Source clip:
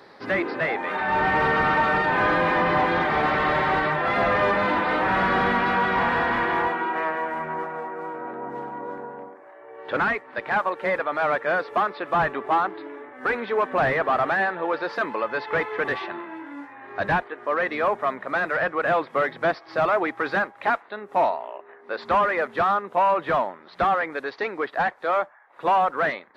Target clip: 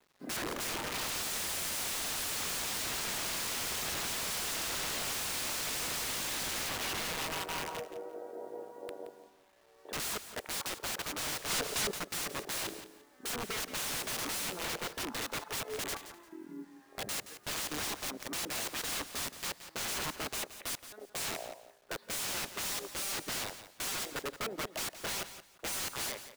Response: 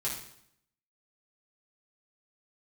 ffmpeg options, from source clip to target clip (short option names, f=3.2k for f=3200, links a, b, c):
-filter_complex "[0:a]afwtdn=0.0631,aeval=exprs='(mod(20*val(0)+1,2)-1)/20':c=same,aecho=1:1:173|346|519:0.237|0.0498|0.0105,asplit=3[a][b][c];[a]afade=t=out:st=11.49:d=0.02[d];[b]aeval=exprs='0.0631*sin(PI/2*1.78*val(0)/0.0631)':c=same,afade=t=in:st=11.49:d=0.02,afade=t=out:st=11.98:d=0.02[e];[c]afade=t=in:st=11.98:d=0.02[f];[d][e][f]amix=inputs=3:normalize=0,asplit=2[g][h];[1:a]atrim=start_sample=2205,asetrate=61740,aresample=44100,adelay=111[i];[h][i]afir=irnorm=-1:irlink=0,volume=-26.5dB[j];[g][j]amix=inputs=2:normalize=0,acrusher=bits=9:mix=0:aa=0.000001,volume=-5.5dB"